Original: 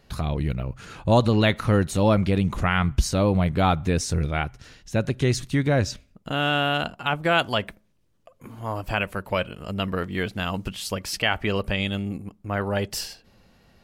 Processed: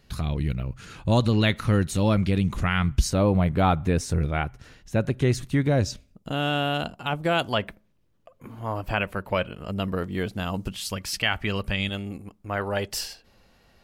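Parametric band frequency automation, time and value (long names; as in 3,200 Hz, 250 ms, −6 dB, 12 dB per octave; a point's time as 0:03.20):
parametric band −6 dB 1.9 octaves
710 Hz
from 0:03.10 5,100 Hz
from 0:05.68 1,700 Hz
from 0:07.50 8,300 Hz
from 0:09.72 2,200 Hz
from 0:10.75 510 Hz
from 0:11.89 160 Hz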